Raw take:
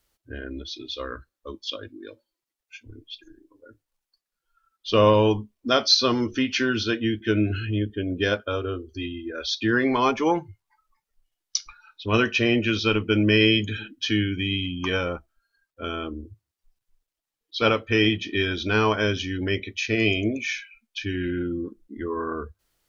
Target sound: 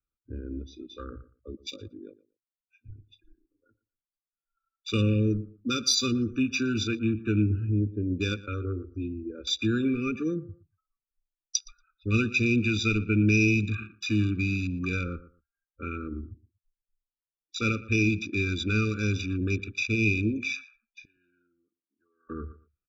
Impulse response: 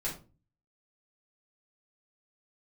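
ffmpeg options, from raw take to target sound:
-filter_complex "[0:a]asettb=1/sr,asplit=3[s0][s1][s2];[s0]atrim=end=21.054[s3];[s1]atrim=start=21.05:end=22.3,asetpts=PTS-STARTPTS,afade=t=in:d=0.004:c=qsin,afade=t=out:st=1.246:d=0.004:c=qsin,aderivative[s4];[s2]atrim=start=22.296[s5];[s3][s4]acrossfade=d=0.004:c1=hsin:c2=qsin[s6];[s6][s5]acrossfade=d=0.004:c1=qsin:c2=hsin,afwtdn=0.0224,highshelf=f=3700:g=8.5,aecho=1:1:0.9:0.53,asplit=2[s7][s8];[s8]adelay=117,lowpass=f=2600:p=1,volume=0.126,asplit=2[s9][s10];[s10]adelay=117,lowpass=f=2600:p=1,volume=0.17[s11];[s7][s9][s11]amix=inputs=3:normalize=0,acrossover=split=380|2300[s12][s13][s14];[s13]acompressor=threshold=0.0141:ratio=6[s15];[s14]agate=range=0.0891:threshold=0.00282:ratio=16:detection=peak[s16];[s12][s15][s16]amix=inputs=3:normalize=0,afftfilt=real='re*eq(mod(floor(b*sr/1024/580),2),0)':imag='im*eq(mod(floor(b*sr/1024/580),2),0)':win_size=1024:overlap=0.75,volume=0.794"

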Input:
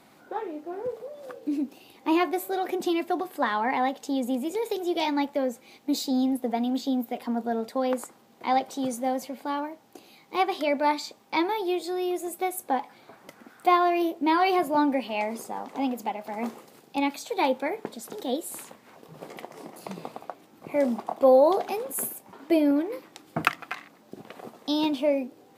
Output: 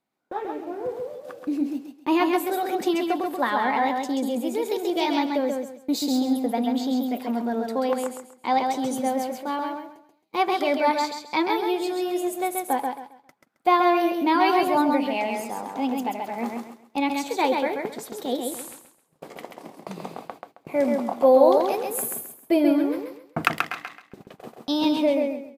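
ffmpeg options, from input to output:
-af "agate=range=0.0398:threshold=0.00794:ratio=16:detection=peak,aecho=1:1:134|268|402|536:0.631|0.17|0.046|0.0124,volume=1.19"

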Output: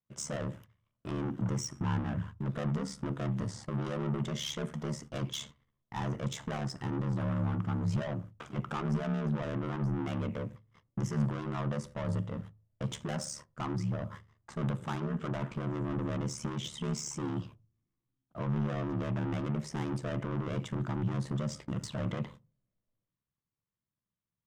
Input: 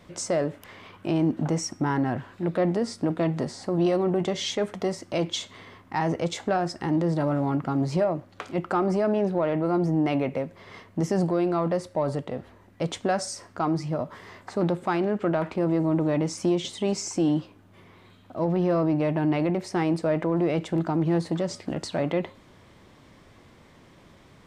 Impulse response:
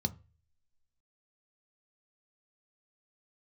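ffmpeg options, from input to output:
-filter_complex "[0:a]agate=range=0.0112:threshold=0.00891:ratio=16:detection=peak,asoftclip=type=tanh:threshold=0.0447,aeval=exprs='val(0)*sin(2*PI*36*n/s)':c=same,asplit=2[s0][s1];[s1]equalizer=f=6600:w=1.3:g=-4[s2];[1:a]atrim=start_sample=2205[s3];[s2][s3]afir=irnorm=-1:irlink=0,volume=0.266[s4];[s0][s4]amix=inputs=2:normalize=0,volume=0.891"

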